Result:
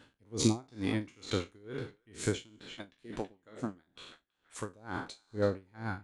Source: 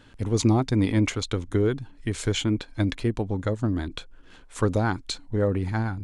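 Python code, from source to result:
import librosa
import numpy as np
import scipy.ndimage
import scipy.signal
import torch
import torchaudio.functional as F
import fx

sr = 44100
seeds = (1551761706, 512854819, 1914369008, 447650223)

y = fx.spec_trails(x, sr, decay_s=0.55)
y = fx.highpass(y, sr, hz=130.0, slope=6)
y = fx.hpss(y, sr, part='harmonic', gain_db=-17, at=(2.56, 4.61))
y = fx.echo_banded(y, sr, ms=327, feedback_pct=50, hz=1600.0, wet_db=-14)
y = y * 10.0 ** (-31 * (0.5 - 0.5 * np.cos(2.0 * np.pi * 2.2 * np.arange(len(y)) / sr)) / 20.0)
y = y * 10.0 ** (-4.0 / 20.0)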